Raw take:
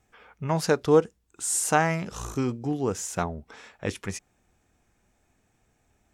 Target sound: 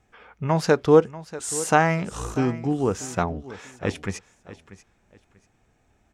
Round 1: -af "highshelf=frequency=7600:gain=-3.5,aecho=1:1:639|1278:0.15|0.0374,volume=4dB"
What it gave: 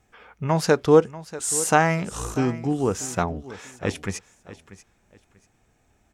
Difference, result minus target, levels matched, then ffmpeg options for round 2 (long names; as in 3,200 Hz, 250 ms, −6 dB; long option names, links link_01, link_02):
8,000 Hz band +4.0 dB
-af "highshelf=frequency=7600:gain=-12.5,aecho=1:1:639|1278:0.15|0.0374,volume=4dB"